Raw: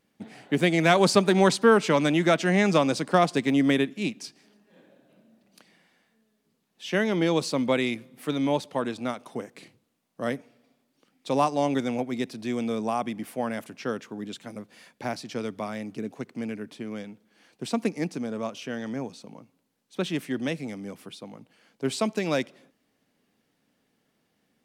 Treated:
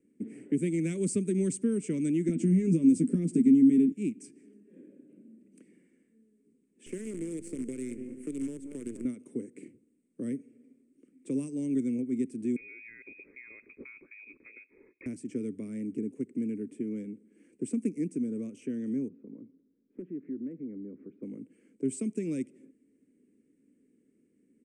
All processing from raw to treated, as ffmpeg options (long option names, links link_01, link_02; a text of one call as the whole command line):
ffmpeg -i in.wav -filter_complex "[0:a]asettb=1/sr,asplit=3[link_01][link_02][link_03];[link_01]atrim=end=2.284[link_04];[link_02]atrim=start=2.28:end=3.92,asetpts=PTS-STARTPTS,afade=type=in:duration=0.004:curve=qsin,afade=type=out:start_time=1.636:duration=0.004:curve=qsin,acompressor=threshold=-23dB:ratio=10:attack=3.2:release=140:knee=1:detection=peak,equalizer=frequency=230:width_type=o:width=1.2:gain=14.5,asplit=2[link_05][link_06];[link_06]adelay=12,volume=-4dB[link_07];[link_05][link_07]amix=inputs=2:normalize=0,atrim=end_sample=72324[link_08];[link_03]atrim=start=3.916[link_09];[link_04][link_08]acrossfade=duration=0.004:curve1=hsin:curve2=qsin[link_10];[link_10][link_09]acrossfade=duration=0.004:curve1=qsin:curve2=hsin,asettb=1/sr,asplit=3[link_11][link_12][link_13];[link_11]atrim=end=6.864[link_14];[link_12]atrim=start=6.86:end=9.05,asetpts=PTS-STARTPTS,afade=type=in:duration=0.004:curve=qsin,afade=type=out:start_time=2.186:duration=0.004:curve=qsin,asplit=2[link_15][link_16];[link_16]adelay=191,lowpass=frequency=1800:poles=1,volume=-15.5dB,asplit=2[link_17][link_18];[link_18]adelay=191,lowpass=frequency=1800:poles=1,volume=0.33,asplit=2[link_19][link_20];[link_20]adelay=191,lowpass=frequency=1800:poles=1,volume=0.33[link_21];[link_15][link_17][link_19][link_21]amix=inputs=4:normalize=0,atrim=end_sample=96579,acompressor=threshold=-33dB:ratio=4:attack=3.2:release=140:knee=1:detection=peak,acrusher=bits=6:dc=4:mix=0:aa=0.000001[link_22];[link_13]atrim=start=9.046[link_23];[link_14][link_22]acrossfade=duration=0.004:curve1=hsin:curve2=qsin[link_24];[link_24][link_23]acrossfade=duration=0.004:curve1=qsin:curve2=hsin,asettb=1/sr,asplit=3[link_25][link_26][link_27];[link_25]atrim=end=12.564[link_28];[link_26]atrim=start=12.56:end=15.06,asetpts=PTS-STARTPTS,afade=type=in:duration=0.004:curve=qsin,afade=type=out:start_time=2.496:duration=0.004:curve=qsin,acompressor=threshold=-33dB:ratio=2.5:attack=3.2:release=140:knee=1:detection=peak,lowpass=frequency=2300:width_type=q:width=0.5098,lowpass=frequency=2300:width_type=q:width=0.6013,lowpass=frequency=2300:width_type=q:width=0.9,lowpass=frequency=2300:width_type=q:width=2.563,afreqshift=-2700[link_29];[link_27]atrim=start=15.056[link_30];[link_28][link_29]acrossfade=duration=0.004:curve1=hsin:curve2=qsin[link_31];[link_31][link_30]acrossfade=duration=0.004:curve1=qsin:curve2=hsin,asettb=1/sr,asplit=3[link_32][link_33][link_34];[link_32]atrim=end=19.084[link_35];[link_33]atrim=start=19.08:end=21.23,asetpts=PTS-STARTPTS,afade=type=in:duration=0.004:curve=qsin,afade=type=out:start_time=2.146:duration=0.004:curve=qsin,lowpass=frequency=1600:width=0.5412,lowpass=frequency=1600:width=1.3066,acompressor=threshold=-48dB:ratio=2.5:attack=3.2:release=140:knee=1:detection=peak,aeval=exprs='0.0168*(abs(mod(val(0)/0.0168+3,4)-2)-1)':channel_layout=same[link_36];[link_34]atrim=start=21.226[link_37];[link_35][link_36]acrossfade=duration=0.004:curve1=hsin:curve2=qsin[link_38];[link_38][link_37]acrossfade=duration=0.004:curve1=qsin:curve2=hsin,equalizer=frequency=7400:width_type=o:width=0.24:gain=-3,acrossover=split=160|3000[link_39][link_40][link_41];[link_40]acompressor=threshold=-41dB:ratio=3[link_42];[link_39][link_42][link_41]amix=inputs=3:normalize=0,firequalizer=gain_entry='entry(140,0);entry(260,14);entry(410,10);entry(740,-23);entry(2200,-4);entry(3900,-27);entry(8300,7);entry(13000,-27)':delay=0.05:min_phase=1,volume=-4dB" out.wav